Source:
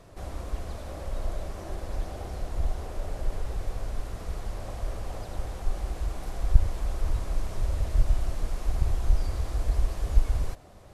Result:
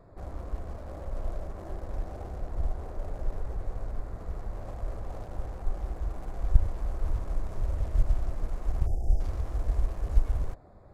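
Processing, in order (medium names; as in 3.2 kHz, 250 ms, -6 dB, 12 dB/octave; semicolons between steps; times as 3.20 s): local Wiener filter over 15 samples; spectral selection erased 8.87–9.20 s, 850–4800 Hz; trim -2 dB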